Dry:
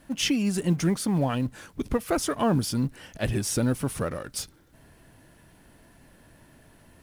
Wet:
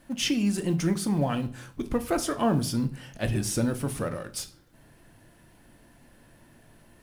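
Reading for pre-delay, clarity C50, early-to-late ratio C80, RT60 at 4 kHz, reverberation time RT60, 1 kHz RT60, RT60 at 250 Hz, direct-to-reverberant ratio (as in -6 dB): 3 ms, 16.0 dB, 20.0 dB, 0.35 s, 0.45 s, 0.40 s, 0.50 s, 8.0 dB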